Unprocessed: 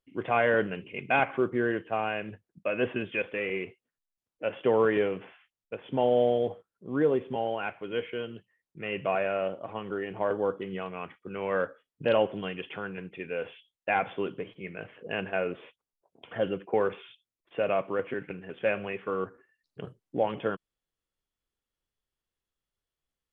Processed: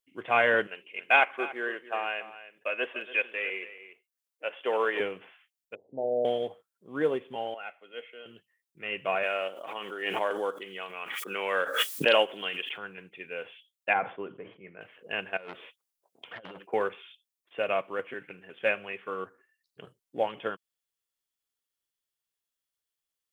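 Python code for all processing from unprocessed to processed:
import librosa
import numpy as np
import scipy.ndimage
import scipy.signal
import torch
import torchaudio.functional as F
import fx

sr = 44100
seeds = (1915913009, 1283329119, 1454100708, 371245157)

y = fx.chain(x, sr, fx.highpass(hz=410.0, slope=12),
    fx.echo_single(ms=285, db=-11.5), at=(0.67, 5.0))
y = fx.chain(y, sr, fx.steep_lowpass(hz=700.0, slope=48),
    fx.low_shelf(hz=340.0, db=-5.0),
    fx.hum_notches(base_hz=50, count=9), at=(5.75, 6.25))
y = fx.chain(y, sr, fx.ladder_highpass(hz=210.0, resonance_pct=25),
    fx.comb(ms=1.5, depth=0.53),
    fx.band_widen(depth_pct=40), at=(7.54, 8.26))
y = fx.chain(y, sr, fx.highpass(hz=280.0, slope=12),
    fx.high_shelf(hz=3200.0, db=10.0),
    fx.pre_swell(db_per_s=24.0), at=(9.23, 12.78))
y = fx.chain(y, sr, fx.lowpass(hz=1400.0, slope=12),
    fx.sustainer(db_per_s=130.0), at=(13.93, 14.81))
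y = fx.chain(y, sr, fx.over_compress(threshold_db=-33.0, ratio=-0.5),
    fx.transformer_sat(knee_hz=1100.0), at=(15.37, 16.67))
y = fx.tilt_eq(y, sr, slope=3.0)
y = fx.upward_expand(y, sr, threshold_db=-37.0, expansion=1.5)
y = y * librosa.db_to_amplitude(3.5)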